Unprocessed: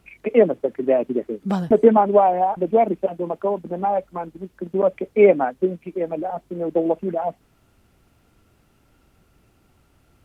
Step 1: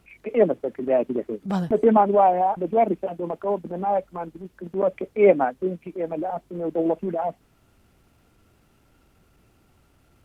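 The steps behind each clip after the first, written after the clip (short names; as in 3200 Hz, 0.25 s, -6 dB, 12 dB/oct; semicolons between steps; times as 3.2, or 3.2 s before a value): transient shaper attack -8 dB, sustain -1 dB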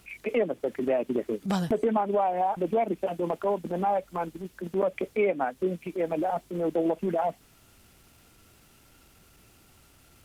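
high shelf 2200 Hz +11.5 dB; compressor 8:1, threshold -22 dBFS, peak gain reduction 12.5 dB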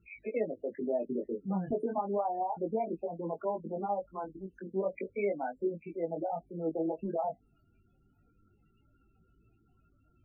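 loudest bins only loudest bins 16; chorus 0.32 Hz, delay 18 ms, depth 3 ms; gain -3.5 dB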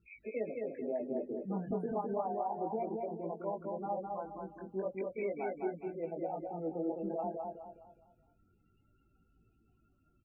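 feedback echo 0.208 s, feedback 37%, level -3.5 dB; gain -5 dB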